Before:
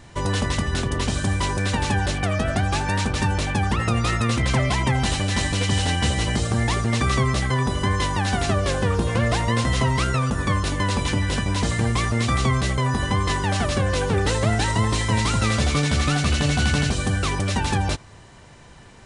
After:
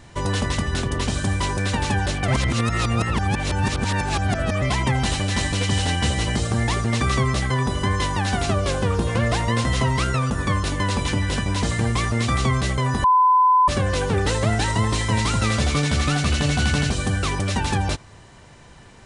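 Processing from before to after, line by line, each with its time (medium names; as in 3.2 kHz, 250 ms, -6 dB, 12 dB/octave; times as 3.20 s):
2.28–4.62 s: reverse
8.42–8.95 s: band-stop 1.8 kHz
13.04–13.68 s: bleep 1.01 kHz -12 dBFS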